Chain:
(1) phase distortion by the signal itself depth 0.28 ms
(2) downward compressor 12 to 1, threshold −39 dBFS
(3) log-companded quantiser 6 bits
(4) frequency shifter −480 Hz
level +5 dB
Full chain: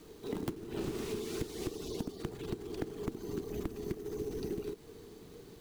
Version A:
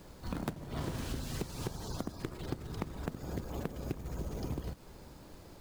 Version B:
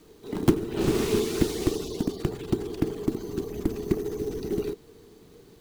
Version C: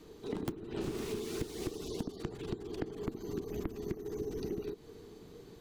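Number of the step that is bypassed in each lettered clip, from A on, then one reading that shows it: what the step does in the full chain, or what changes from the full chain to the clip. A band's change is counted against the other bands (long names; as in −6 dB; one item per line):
4, 500 Hz band −7.5 dB
2, average gain reduction 9.0 dB
3, distortion level −22 dB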